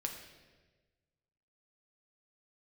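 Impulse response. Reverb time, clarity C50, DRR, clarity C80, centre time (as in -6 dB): 1.3 s, 6.0 dB, 2.0 dB, 8.0 dB, 32 ms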